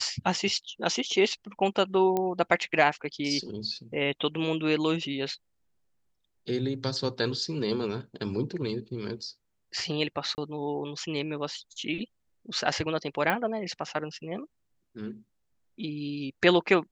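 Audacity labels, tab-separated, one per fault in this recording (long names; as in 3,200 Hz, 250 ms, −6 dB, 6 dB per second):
2.170000	2.170000	click −15 dBFS
10.350000	10.380000	drop-out 29 ms
13.300000	13.300000	click −13 dBFS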